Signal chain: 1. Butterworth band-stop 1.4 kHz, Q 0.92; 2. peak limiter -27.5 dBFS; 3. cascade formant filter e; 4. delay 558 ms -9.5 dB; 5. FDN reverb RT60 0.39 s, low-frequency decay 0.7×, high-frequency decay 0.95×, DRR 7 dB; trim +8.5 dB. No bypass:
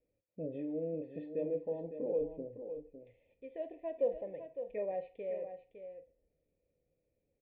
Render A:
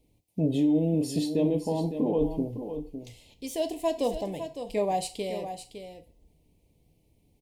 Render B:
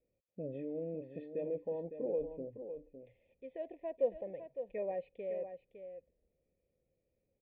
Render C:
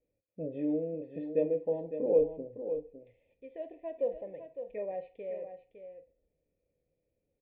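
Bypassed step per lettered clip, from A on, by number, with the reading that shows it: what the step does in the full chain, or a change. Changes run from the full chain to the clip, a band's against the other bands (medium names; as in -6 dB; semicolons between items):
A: 3, 500 Hz band -10.5 dB; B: 5, echo-to-direct -5.0 dB to -9.5 dB; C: 2, crest factor change +3.0 dB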